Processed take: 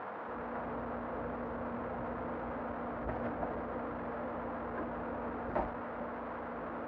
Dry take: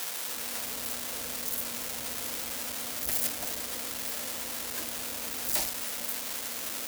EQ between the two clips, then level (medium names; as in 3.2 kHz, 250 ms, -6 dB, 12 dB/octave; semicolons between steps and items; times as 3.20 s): low-pass 1.3 kHz 24 dB/octave; +6.0 dB